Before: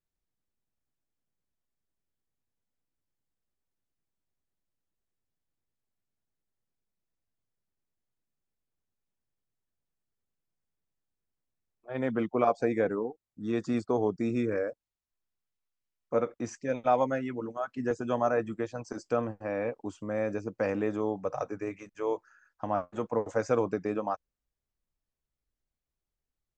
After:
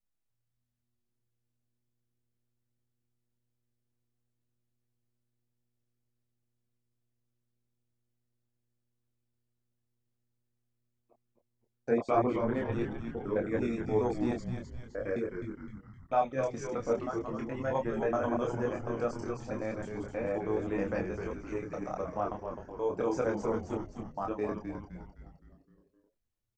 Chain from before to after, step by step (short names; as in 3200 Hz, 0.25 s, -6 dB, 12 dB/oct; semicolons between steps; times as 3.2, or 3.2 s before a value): slices in reverse order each 0.106 s, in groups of 8; chorus voices 4, 0.31 Hz, delay 26 ms, depth 4.8 ms; frequency-shifting echo 0.258 s, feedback 50%, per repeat -120 Hz, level -6 dB